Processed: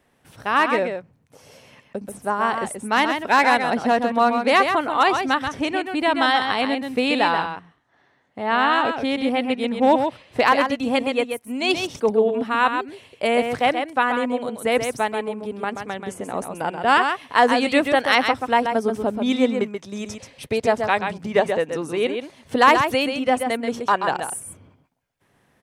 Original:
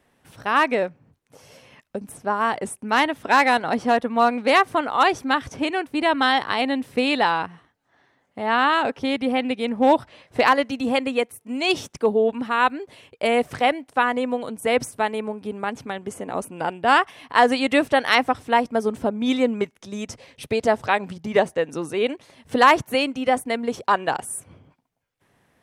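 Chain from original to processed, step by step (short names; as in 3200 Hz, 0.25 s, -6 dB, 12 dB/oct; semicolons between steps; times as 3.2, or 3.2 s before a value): 7.4–8.92 high shelf 11000 Hz -11 dB; echo 0.132 s -6.5 dB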